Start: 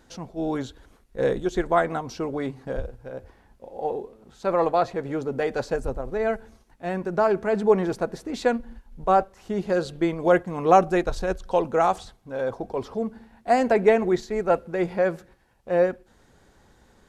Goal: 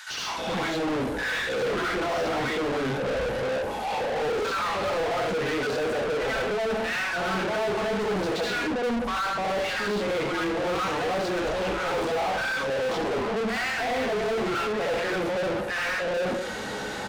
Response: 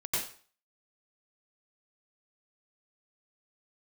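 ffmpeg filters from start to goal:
-filter_complex "[0:a]acrossover=split=1200[s0][s1];[s0]adelay=300[s2];[s2][s1]amix=inputs=2:normalize=0,areverse,acompressor=threshold=0.0224:ratio=6,areverse[s3];[1:a]atrim=start_sample=2205,asetrate=57330,aresample=44100[s4];[s3][s4]afir=irnorm=-1:irlink=0,asplit=2[s5][s6];[s6]highpass=f=720:p=1,volume=79.4,asoftclip=type=tanh:threshold=0.106[s7];[s5][s7]amix=inputs=2:normalize=0,lowpass=f=5800:p=1,volume=0.501,acrossover=split=5000[s8][s9];[s9]acompressor=threshold=0.00631:ratio=4:attack=1:release=60[s10];[s8][s10]amix=inputs=2:normalize=0,volume=0.841"

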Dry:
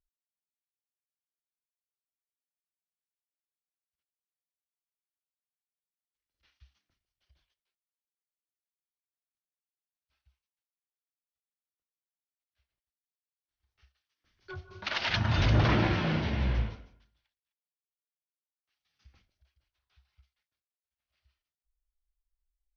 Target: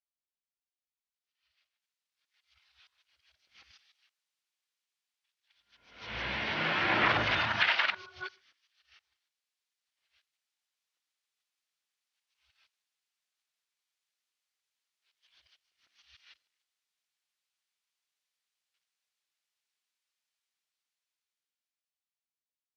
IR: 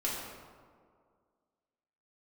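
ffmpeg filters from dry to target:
-filter_complex "[0:a]areverse,acrossover=split=2600[s0][s1];[s1]acompressor=threshold=0.00251:ratio=4:attack=1:release=60[s2];[s0][s2]amix=inputs=2:normalize=0,highshelf=f=4500:g=-5.5,dynaudnorm=f=430:g=9:m=5.96,bandpass=f=3900:t=q:w=0.68:csg=0,asplit=2[s3][s4];[1:a]atrim=start_sample=2205,afade=t=out:st=0.2:d=0.01,atrim=end_sample=9261[s5];[s4][s5]afir=irnorm=-1:irlink=0,volume=0.0398[s6];[s3][s6]amix=inputs=2:normalize=0"

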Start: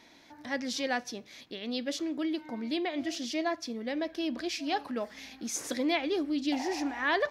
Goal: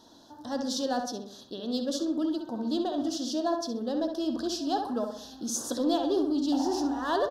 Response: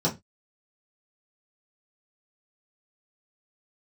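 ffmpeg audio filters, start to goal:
-filter_complex "[0:a]asplit=2[s0][s1];[s1]asoftclip=type=hard:threshold=0.0316,volume=0.422[s2];[s0][s2]amix=inputs=2:normalize=0,asuperstop=centerf=2200:order=4:qfactor=1,asplit=2[s3][s4];[s4]adelay=65,lowpass=f=2800:p=1,volume=0.562,asplit=2[s5][s6];[s6]adelay=65,lowpass=f=2800:p=1,volume=0.46,asplit=2[s7][s8];[s8]adelay=65,lowpass=f=2800:p=1,volume=0.46,asplit=2[s9][s10];[s10]adelay=65,lowpass=f=2800:p=1,volume=0.46,asplit=2[s11][s12];[s12]adelay=65,lowpass=f=2800:p=1,volume=0.46,asplit=2[s13][s14];[s14]adelay=65,lowpass=f=2800:p=1,volume=0.46[s15];[s3][s5][s7][s9][s11][s13][s15]amix=inputs=7:normalize=0"

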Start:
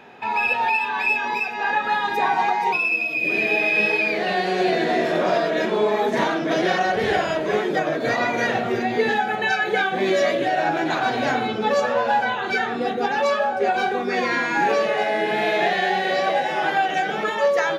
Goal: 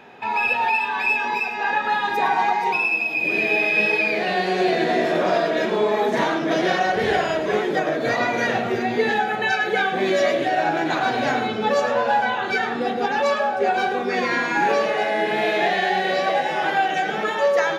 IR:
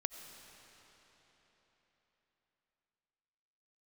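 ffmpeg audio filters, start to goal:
-filter_complex "[0:a]asplit=2[s0][s1];[1:a]atrim=start_sample=2205,adelay=106[s2];[s1][s2]afir=irnorm=-1:irlink=0,volume=0.282[s3];[s0][s3]amix=inputs=2:normalize=0"

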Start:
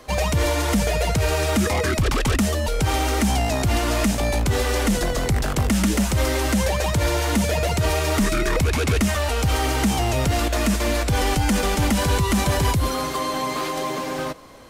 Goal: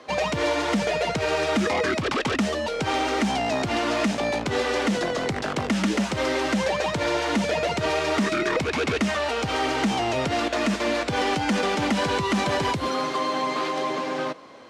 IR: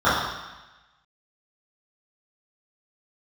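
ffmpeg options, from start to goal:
-af "highpass=210,lowpass=4600"

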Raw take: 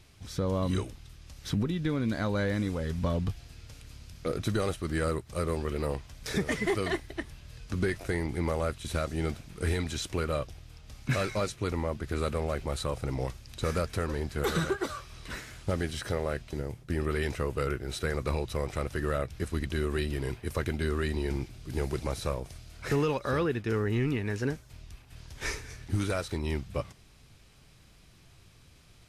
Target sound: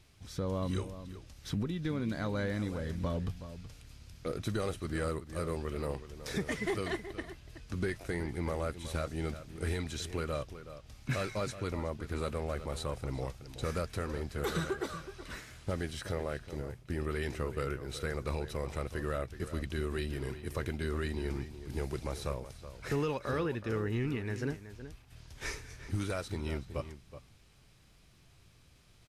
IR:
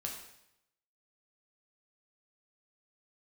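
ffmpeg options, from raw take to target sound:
-filter_complex "[0:a]asplit=2[s0][s1];[s1]adelay=373.2,volume=0.251,highshelf=f=4000:g=-8.4[s2];[s0][s2]amix=inputs=2:normalize=0,volume=0.562"

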